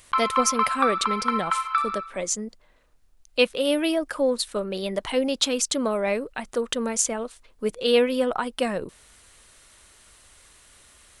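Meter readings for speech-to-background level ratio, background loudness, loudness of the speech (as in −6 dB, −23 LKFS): −0.5 dB, −25.0 LKFS, −25.5 LKFS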